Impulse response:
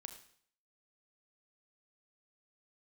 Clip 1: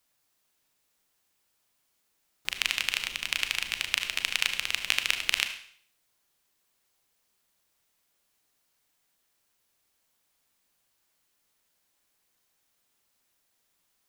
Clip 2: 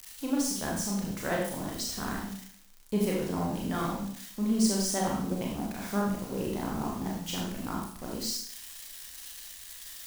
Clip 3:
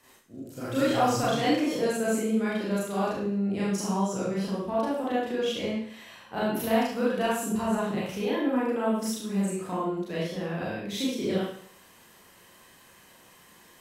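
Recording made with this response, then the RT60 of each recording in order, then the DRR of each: 1; 0.60 s, 0.60 s, 0.60 s; 7.0 dB, -2.5 dB, -8.5 dB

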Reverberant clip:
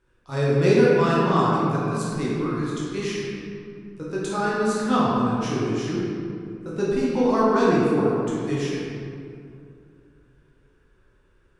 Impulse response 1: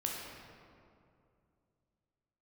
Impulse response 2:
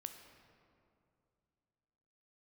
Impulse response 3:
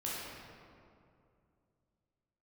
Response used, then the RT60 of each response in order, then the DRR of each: 3; 2.5 s, 2.5 s, 2.5 s; -2.0 dB, 6.0 dB, -7.5 dB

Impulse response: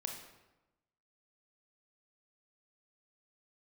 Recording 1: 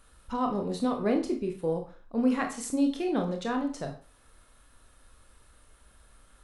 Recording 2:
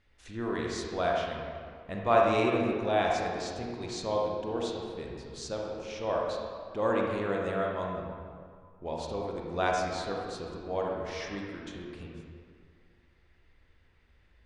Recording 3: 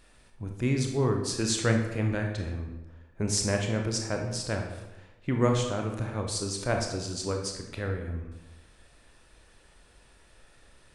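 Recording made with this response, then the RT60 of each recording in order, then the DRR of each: 3; 0.40 s, 2.1 s, 1.0 s; 3.5 dB, -1.5 dB, 2.5 dB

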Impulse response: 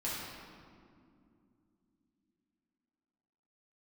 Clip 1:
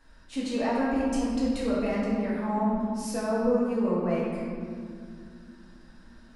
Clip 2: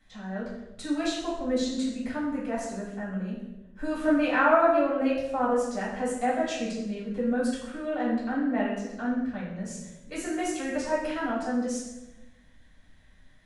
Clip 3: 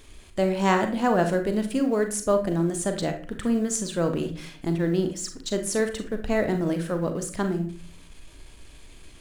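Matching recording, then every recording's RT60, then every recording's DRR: 1; 2.5 s, 1.0 s, 0.45 s; -8.5 dB, -10.0 dB, 6.0 dB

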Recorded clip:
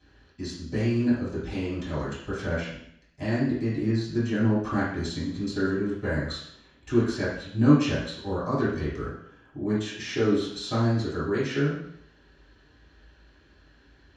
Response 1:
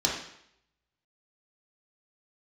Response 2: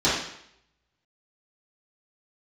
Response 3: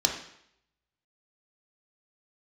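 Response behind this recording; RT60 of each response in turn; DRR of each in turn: 2; 0.70 s, 0.70 s, 0.70 s; -4.0 dB, -12.5 dB, 1.0 dB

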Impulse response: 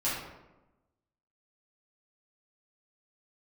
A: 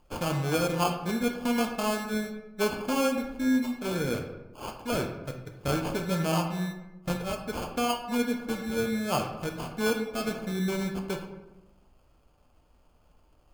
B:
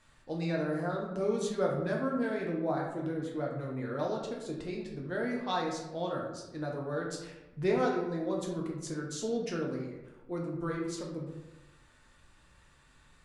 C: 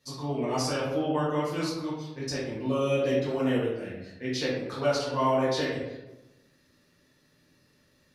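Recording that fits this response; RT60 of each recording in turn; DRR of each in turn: C; 1.0 s, 1.0 s, 1.0 s; 2.5 dB, -2.0 dB, -10.0 dB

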